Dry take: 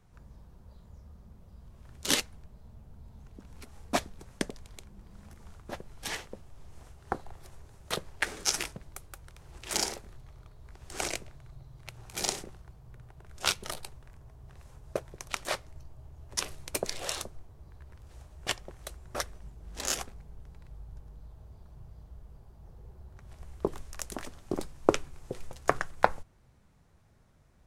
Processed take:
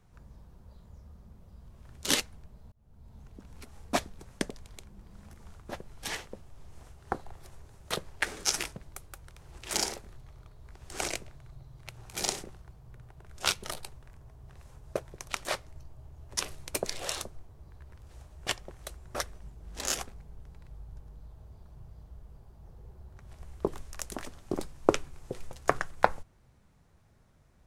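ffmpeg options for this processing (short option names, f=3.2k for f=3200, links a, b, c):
-filter_complex "[0:a]asplit=2[a][b];[a]atrim=end=2.72,asetpts=PTS-STARTPTS,afade=t=out:st=2.716:d=0.004:c=hsin[c];[b]atrim=start=2.72,asetpts=PTS-STARTPTS,afade=t=in:d=0.45[d];[c][d]concat=n=2:v=0:a=1"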